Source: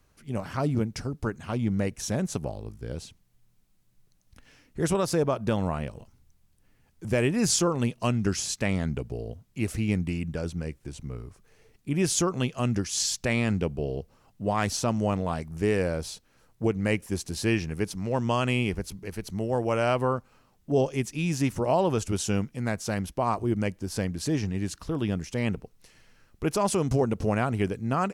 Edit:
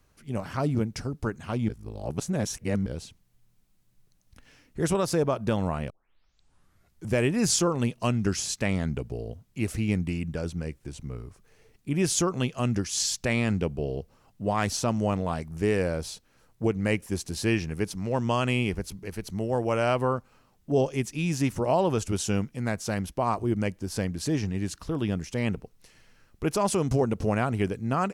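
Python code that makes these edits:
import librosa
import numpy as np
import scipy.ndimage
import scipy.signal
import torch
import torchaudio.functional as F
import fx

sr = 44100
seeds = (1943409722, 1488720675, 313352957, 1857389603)

y = fx.edit(x, sr, fx.reverse_span(start_s=1.69, length_s=1.17),
    fx.tape_start(start_s=5.9, length_s=1.16), tone=tone)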